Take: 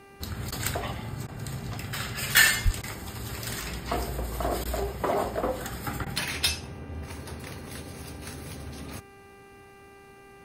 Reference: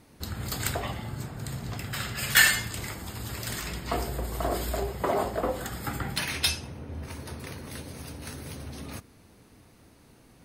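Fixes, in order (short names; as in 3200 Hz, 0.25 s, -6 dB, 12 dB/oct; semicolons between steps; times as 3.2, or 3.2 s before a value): de-hum 395.9 Hz, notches 7; 2.64–2.76 HPF 140 Hz 24 dB/oct; interpolate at 0.51/1.27/2.82/4.64/6.05, 12 ms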